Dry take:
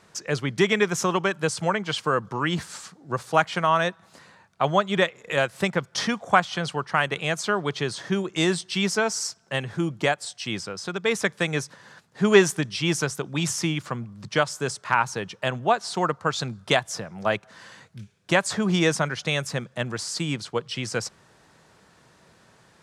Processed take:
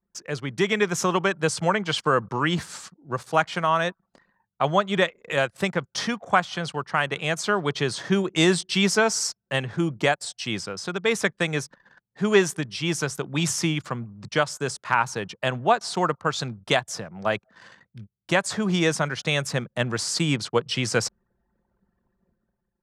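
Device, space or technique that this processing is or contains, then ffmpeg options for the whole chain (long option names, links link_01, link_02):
voice memo with heavy noise removal: -af "anlmdn=0.0398,dynaudnorm=framelen=170:gausssize=9:maxgain=11.5dB,volume=-4.5dB"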